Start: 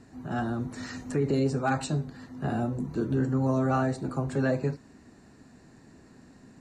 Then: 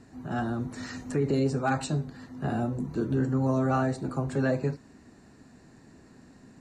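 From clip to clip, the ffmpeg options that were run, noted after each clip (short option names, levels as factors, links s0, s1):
-af anull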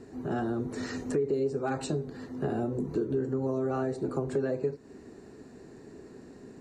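-af "equalizer=f=410:w=2:g=14,acompressor=threshold=0.0398:ratio=4"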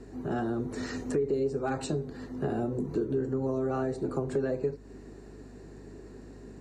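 -af "aeval=exprs='val(0)+0.00316*(sin(2*PI*50*n/s)+sin(2*PI*2*50*n/s)/2+sin(2*PI*3*50*n/s)/3+sin(2*PI*4*50*n/s)/4+sin(2*PI*5*50*n/s)/5)':c=same"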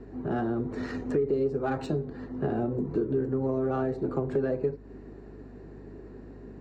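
-af "adynamicsmooth=sensitivity=3.5:basefreq=2700,volume=1.26"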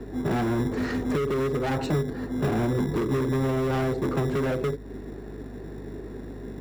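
-filter_complex "[0:a]acrossover=split=190[s0][s1];[s0]acrusher=samples=24:mix=1:aa=0.000001[s2];[s1]asoftclip=type=hard:threshold=0.0224[s3];[s2][s3]amix=inputs=2:normalize=0,volume=2.37"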